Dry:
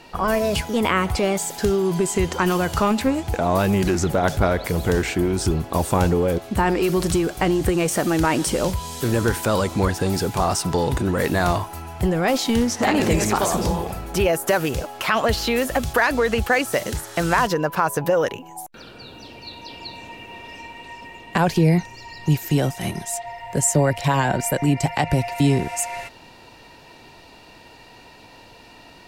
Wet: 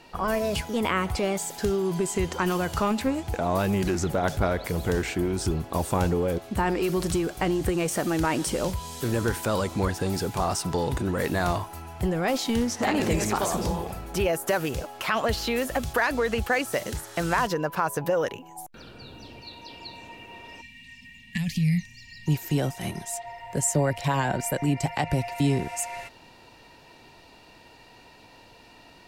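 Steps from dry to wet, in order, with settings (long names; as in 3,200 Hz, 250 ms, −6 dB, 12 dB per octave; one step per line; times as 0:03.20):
0:18.58–0:19.41: low-shelf EQ 190 Hz +7.5 dB
0:20.61–0:22.27: gain on a spectral selection 260–1,700 Hz −27 dB
level −5.5 dB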